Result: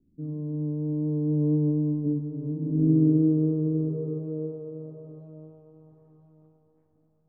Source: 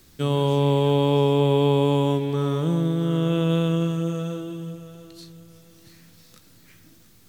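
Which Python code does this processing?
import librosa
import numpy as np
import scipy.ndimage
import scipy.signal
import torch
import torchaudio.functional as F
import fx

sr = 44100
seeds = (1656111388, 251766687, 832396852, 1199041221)

y = fx.doppler_pass(x, sr, speed_mps=21, closest_m=3.9, pass_at_s=2.37)
y = fx.over_compress(y, sr, threshold_db=-32.0, ratio=-0.5)
y = fx.tilt_shelf(y, sr, db=4.5, hz=1400.0)
y = fx.echo_feedback(y, sr, ms=1010, feedback_pct=26, wet_db=-11.0)
y = fx.filter_sweep_lowpass(y, sr, from_hz=260.0, to_hz=790.0, start_s=2.57, end_s=5.99, q=3.5)
y = y * 10.0 ** (1.0 / 20.0)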